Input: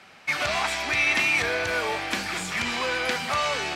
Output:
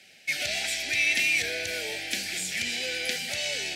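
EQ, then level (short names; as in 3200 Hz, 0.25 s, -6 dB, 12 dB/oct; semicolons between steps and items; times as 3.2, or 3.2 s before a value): Butterworth band-stop 1100 Hz, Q 0.95; tilt +3 dB/oct; low shelf 210 Hz +7.5 dB; -5.0 dB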